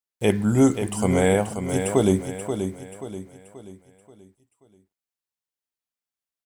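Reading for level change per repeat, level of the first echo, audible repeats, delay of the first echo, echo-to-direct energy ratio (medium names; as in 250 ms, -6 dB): -7.5 dB, -8.0 dB, 4, 532 ms, -7.0 dB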